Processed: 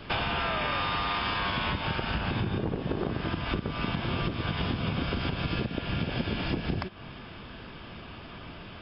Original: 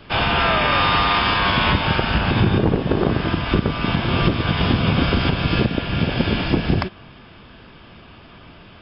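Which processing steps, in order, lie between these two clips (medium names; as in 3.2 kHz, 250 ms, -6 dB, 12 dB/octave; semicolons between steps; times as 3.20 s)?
compression 5:1, threshold -28 dBFS, peak gain reduction 15 dB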